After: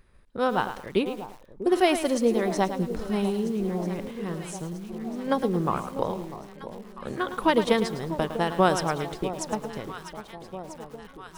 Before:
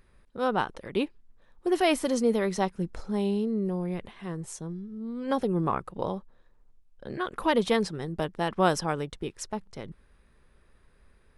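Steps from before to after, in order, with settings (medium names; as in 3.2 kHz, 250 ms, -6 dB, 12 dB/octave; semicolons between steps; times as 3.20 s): transient shaper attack +5 dB, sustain +1 dB; echo whose repeats swap between lows and highs 646 ms, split 950 Hz, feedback 75%, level -11.5 dB; bit-crushed delay 108 ms, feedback 35%, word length 7-bit, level -10 dB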